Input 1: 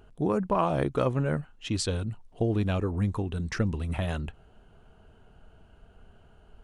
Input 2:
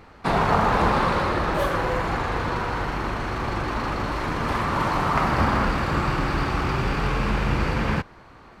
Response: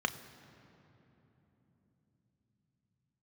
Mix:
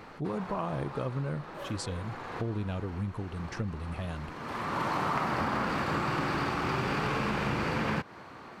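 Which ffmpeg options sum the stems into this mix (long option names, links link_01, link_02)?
-filter_complex "[0:a]equalizer=frequency=140:width=1.5:gain=4.5,volume=-8dB,asplit=2[link_01][link_02];[1:a]highpass=130,volume=1.5dB[link_03];[link_02]apad=whole_len=379279[link_04];[link_03][link_04]sidechaincompress=threshold=-54dB:ratio=5:attack=8.8:release=693[link_05];[link_01][link_05]amix=inputs=2:normalize=0,acompressor=threshold=-27dB:ratio=6"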